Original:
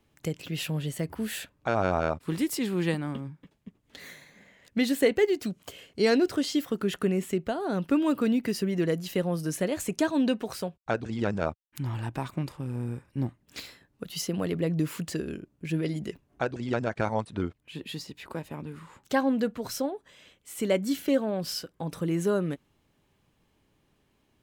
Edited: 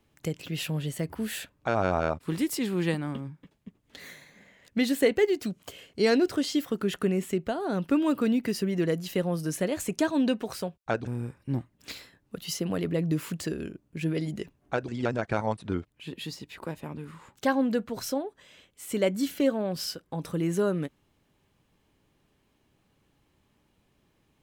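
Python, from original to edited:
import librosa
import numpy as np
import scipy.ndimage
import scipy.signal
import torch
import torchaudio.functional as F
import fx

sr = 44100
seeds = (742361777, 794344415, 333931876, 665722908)

y = fx.edit(x, sr, fx.cut(start_s=11.07, length_s=1.68), tone=tone)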